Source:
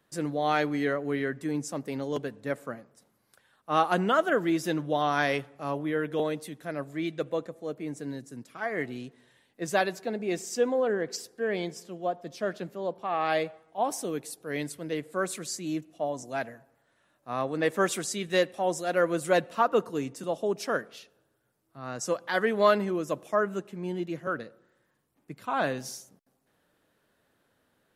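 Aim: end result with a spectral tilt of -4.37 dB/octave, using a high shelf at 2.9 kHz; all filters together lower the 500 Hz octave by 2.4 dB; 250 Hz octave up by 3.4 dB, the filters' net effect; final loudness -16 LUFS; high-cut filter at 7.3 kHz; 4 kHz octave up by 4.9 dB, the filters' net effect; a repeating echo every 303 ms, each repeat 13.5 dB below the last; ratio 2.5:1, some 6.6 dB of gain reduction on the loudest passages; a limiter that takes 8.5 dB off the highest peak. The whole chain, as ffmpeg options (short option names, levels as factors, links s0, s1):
-af "lowpass=7300,equalizer=f=250:t=o:g=6.5,equalizer=f=500:t=o:g=-5,highshelf=f=2900:g=4,equalizer=f=4000:t=o:g=3.5,acompressor=threshold=0.0398:ratio=2.5,alimiter=limit=0.0631:level=0:latency=1,aecho=1:1:303|606:0.211|0.0444,volume=8.91"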